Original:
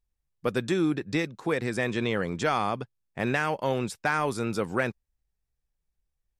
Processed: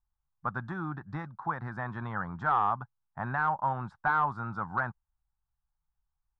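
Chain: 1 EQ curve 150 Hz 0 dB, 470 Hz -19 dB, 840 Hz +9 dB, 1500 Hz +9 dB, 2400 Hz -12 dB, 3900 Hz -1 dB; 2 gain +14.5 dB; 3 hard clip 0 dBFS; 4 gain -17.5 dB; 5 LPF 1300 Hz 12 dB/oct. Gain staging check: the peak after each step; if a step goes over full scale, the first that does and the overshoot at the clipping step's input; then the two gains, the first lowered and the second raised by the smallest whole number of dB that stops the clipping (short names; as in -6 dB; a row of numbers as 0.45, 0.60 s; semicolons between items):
-8.0, +6.5, 0.0, -17.5, -17.5 dBFS; step 2, 6.5 dB; step 2 +7.5 dB, step 4 -10.5 dB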